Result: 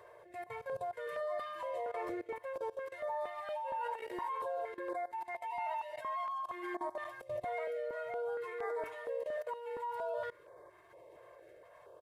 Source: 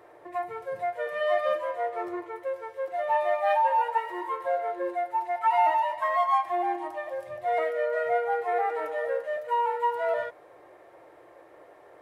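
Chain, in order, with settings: dynamic EQ 550 Hz, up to -5 dB, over -38 dBFS, Q 3.1; compressor 4:1, threshold -28 dBFS, peak gain reduction 8 dB; comb 1.9 ms, depth 78%; Schroeder reverb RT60 0.51 s, combs from 26 ms, DRR 16.5 dB; level quantiser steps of 19 dB; stepped notch 4.3 Hz 270–2800 Hz; gain +1.5 dB

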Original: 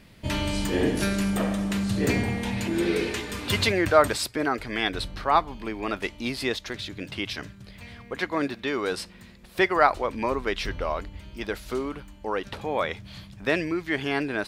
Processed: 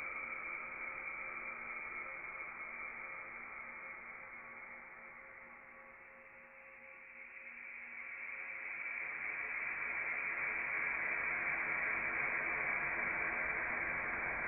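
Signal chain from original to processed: Chebyshev high-pass 1200 Hz, order 5; Paulstretch 25×, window 0.50 s, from 11.87; inverted band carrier 3500 Hz

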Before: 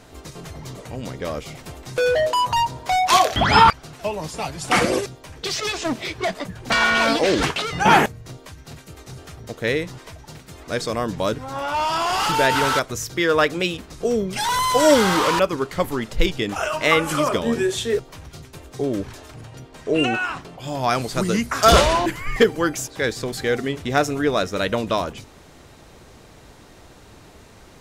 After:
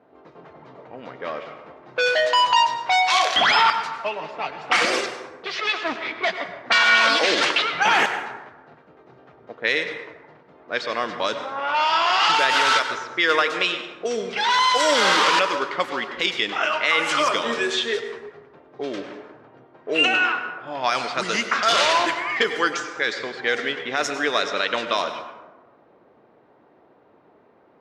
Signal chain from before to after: low-pass opened by the level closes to 530 Hz, open at -15.5 dBFS; tilt shelf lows -8.5 dB, about 810 Hz; limiter -8 dBFS, peak gain reduction 11 dB; BPF 240–4900 Hz; plate-style reverb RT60 1.2 s, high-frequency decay 0.45×, pre-delay 85 ms, DRR 8 dB

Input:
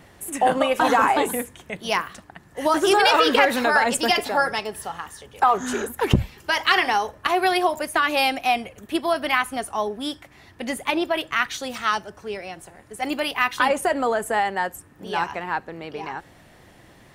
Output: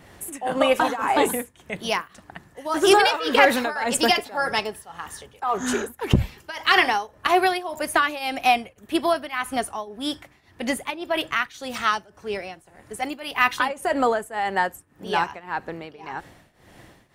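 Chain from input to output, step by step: tremolo triangle 1.8 Hz, depth 90%; gain +3.5 dB

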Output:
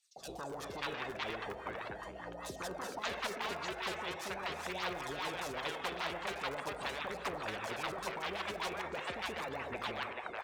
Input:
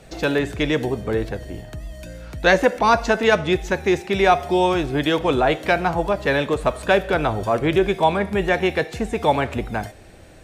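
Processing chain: in parallel at -3.5 dB: wrapped overs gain 13 dB; on the sum: wah 5 Hz 390–1200 Hz, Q 10; limiter -20 dBFS, peak gain reduction 9 dB; three bands offset in time highs, lows, mids 0.16/0.59 s, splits 740/5000 Hz; on a send at -15 dB: reverb RT60 0.60 s, pre-delay 5 ms; on the sum: phaser 0.41 Hz, delay 3.1 ms, feedback 41%; low shelf 390 Hz -7.5 dB; spectral compressor 4:1; gain -5.5 dB

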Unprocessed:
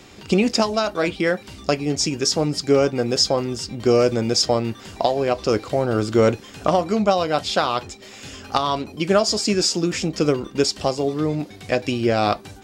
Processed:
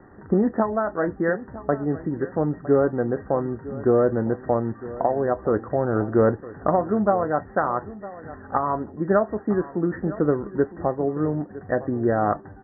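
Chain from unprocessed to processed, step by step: Chebyshev low-pass 1900 Hz, order 10; echo 0.959 s -16.5 dB; gain -1.5 dB

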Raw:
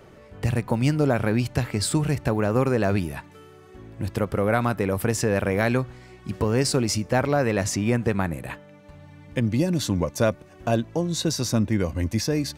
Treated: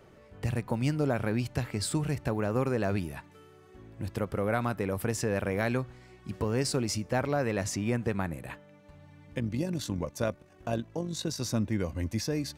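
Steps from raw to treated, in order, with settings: 9.38–11.41 AM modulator 48 Hz, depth 30%; gain -7 dB

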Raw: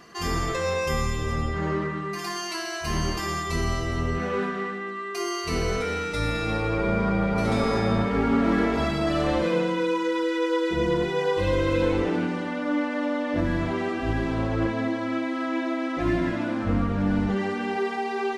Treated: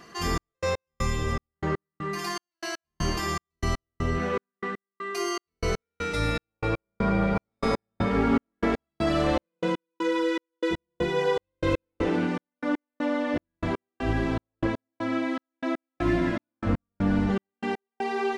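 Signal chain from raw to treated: step gate "xxx..x.." 120 bpm -60 dB

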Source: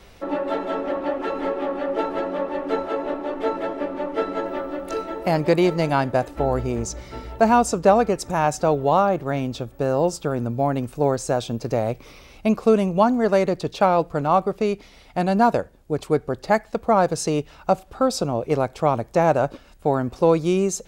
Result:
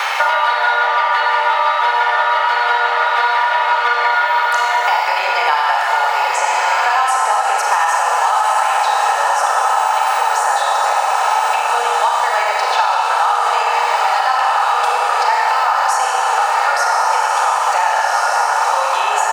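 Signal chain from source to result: high shelf 4300 Hz -8 dB; diffused feedback echo 1.531 s, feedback 61%, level -5.5 dB; compressor, threshold -23 dBFS, peak gain reduction 12.5 dB; inverse Chebyshev high-pass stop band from 310 Hz, stop band 50 dB; varispeed +8%; comb 2.3 ms, depth 43%; Schroeder reverb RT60 1.7 s, combs from 26 ms, DRR -3 dB; maximiser +18.5 dB; three-band squash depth 100%; gain -4 dB

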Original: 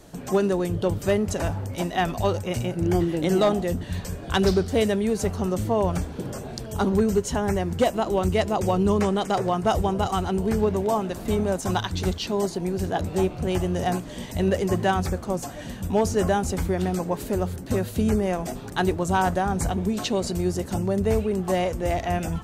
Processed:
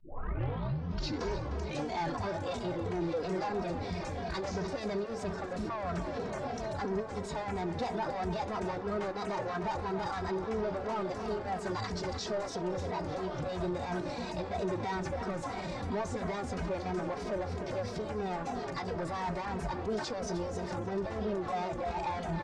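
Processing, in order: tape start at the beginning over 2.11 s; formant shift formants +4 st; in parallel at -1.5 dB: negative-ratio compressor -25 dBFS; on the sum: low shelf 300 Hz -7.5 dB; soft clip -22.5 dBFS, distortion -10 dB; dynamic EQ 3100 Hz, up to -6 dB, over -48 dBFS, Q 1.9; on a send: tape echo 0.301 s, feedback 84%, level -9.5 dB, low-pass 3600 Hz; on the sum: limiter -26 dBFS, peak gain reduction 8 dB; LPF 5800 Hz 24 dB/oct; endless flanger 2.8 ms -3 Hz

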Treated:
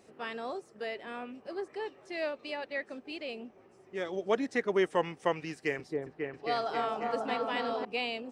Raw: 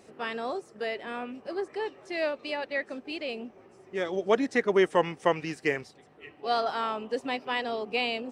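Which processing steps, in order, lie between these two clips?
5.52–7.85 repeats that get brighter 0.271 s, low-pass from 750 Hz, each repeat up 1 oct, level 0 dB; gain -5 dB

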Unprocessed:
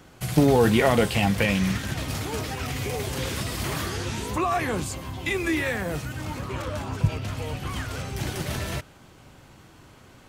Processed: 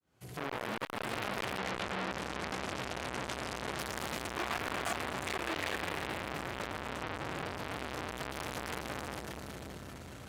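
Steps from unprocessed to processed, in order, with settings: opening faded in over 1.68 s; HPF 51 Hz 24 dB/oct; bell 77 Hz +2.5 dB 1.7 oct; notches 50/100 Hz; multi-head echo 0.194 s, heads second and third, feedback 45%, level -11 dB; non-linear reverb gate 0.43 s rising, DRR 2 dB; hard clip -23 dBFS, distortion -10 dB; 1.58–3.79 LPF 8300 Hz 12 dB/oct; core saturation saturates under 1600 Hz

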